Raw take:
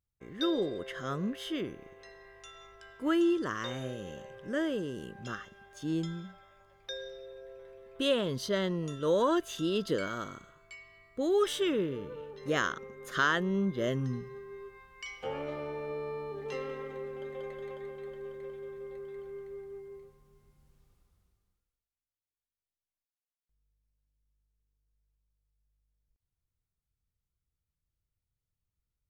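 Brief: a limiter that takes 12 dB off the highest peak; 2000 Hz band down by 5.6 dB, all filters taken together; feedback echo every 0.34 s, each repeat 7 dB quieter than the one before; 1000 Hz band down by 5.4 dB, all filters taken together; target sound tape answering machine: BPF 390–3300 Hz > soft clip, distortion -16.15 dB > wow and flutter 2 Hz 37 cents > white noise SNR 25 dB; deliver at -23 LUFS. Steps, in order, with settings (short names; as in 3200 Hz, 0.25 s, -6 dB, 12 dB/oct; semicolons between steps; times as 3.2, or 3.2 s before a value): bell 1000 Hz -5 dB; bell 2000 Hz -5 dB; limiter -30 dBFS; BPF 390–3300 Hz; feedback echo 0.34 s, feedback 45%, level -7 dB; soft clip -36.5 dBFS; wow and flutter 2 Hz 37 cents; white noise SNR 25 dB; gain +22 dB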